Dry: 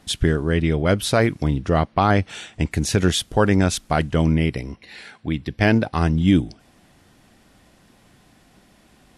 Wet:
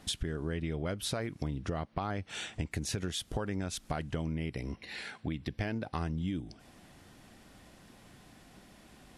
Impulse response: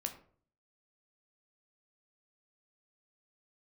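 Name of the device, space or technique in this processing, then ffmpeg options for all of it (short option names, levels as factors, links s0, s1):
serial compression, peaks first: -af "acompressor=threshold=0.0501:ratio=5,acompressor=threshold=0.0251:ratio=2,volume=0.794"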